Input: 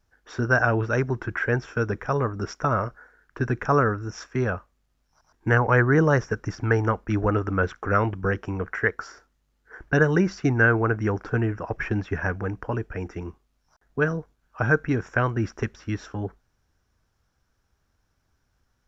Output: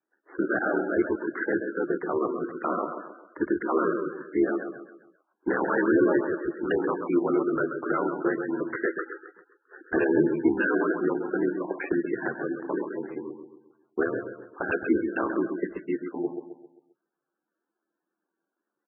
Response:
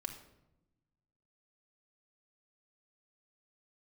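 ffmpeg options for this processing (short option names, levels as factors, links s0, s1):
-af "agate=range=0.447:threshold=0.00355:ratio=16:detection=peak,highpass=f=230:w=0.5412,highpass=f=230:w=1.3066,aeval=exprs='val(0)*sin(2*PI*39*n/s)':c=same,asoftclip=type=hard:threshold=0.0891,adynamicequalizer=threshold=0.00501:dfrequency=470:dqfactor=6.1:tfrequency=470:tqfactor=6.1:attack=5:release=100:ratio=0.375:range=2:mode=cutabove:tftype=bell,adynamicsmooth=sensitivity=1.5:basefreq=4300,equalizer=f=340:t=o:w=0.36:g=12,aecho=1:1:132|264|396|528|660:0.447|0.192|0.0826|0.0355|0.0153" -ar 22050 -c:a libmp3lame -b:a 8k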